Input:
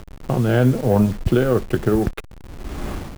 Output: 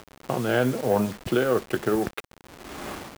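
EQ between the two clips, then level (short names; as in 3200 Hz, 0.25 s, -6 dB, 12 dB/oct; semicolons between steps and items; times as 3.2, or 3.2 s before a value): HPF 540 Hz 6 dB/oct; 0.0 dB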